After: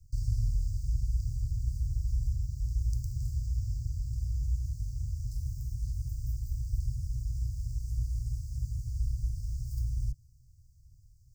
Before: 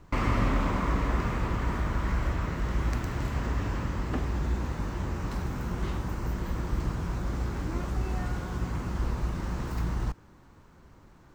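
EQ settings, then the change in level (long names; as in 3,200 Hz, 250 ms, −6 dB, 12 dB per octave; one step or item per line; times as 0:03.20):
Chebyshev band-stop filter 130–4,800 Hz, order 5
phaser with its sweep stopped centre 1,200 Hz, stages 4
0.0 dB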